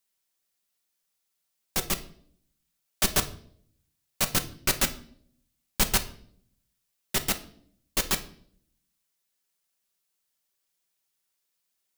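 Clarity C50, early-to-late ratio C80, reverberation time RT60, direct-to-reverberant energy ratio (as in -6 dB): 14.5 dB, 19.0 dB, 0.60 s, 6.5 dB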